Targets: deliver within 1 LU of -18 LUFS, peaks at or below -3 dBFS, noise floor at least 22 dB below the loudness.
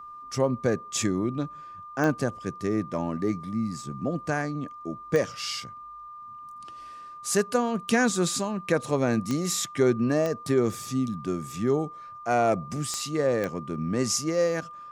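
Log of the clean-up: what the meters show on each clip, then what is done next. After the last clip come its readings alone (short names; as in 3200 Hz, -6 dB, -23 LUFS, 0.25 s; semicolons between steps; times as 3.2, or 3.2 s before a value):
clicks 6; steady tone 1200 Hz; tone level -40 dBFS; loudness -27.5 LUFS; peak -10.5 dBFS; loudness target -18.0 LUFS
-> de-click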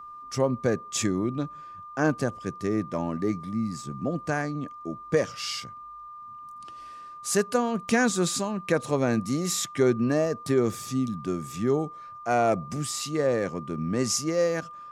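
clicks 0; steady tone 1200 Hz; tone level -40 dBFS
-> notch 1200 Hz, Q 30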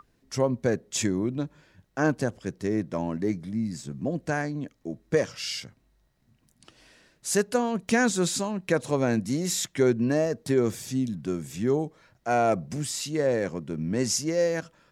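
steady tone none; loudness -27.5 LUFS; peak -10.5 dBFS; loudness target -18.0 LUFS
-> gain +9.5 dB; limiter -3 dBFS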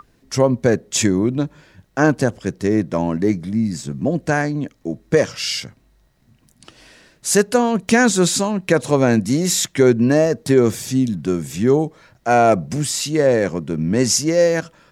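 loudness -18.0 LUFS; peak -3.0 dBFS; noise floor -58 dBFS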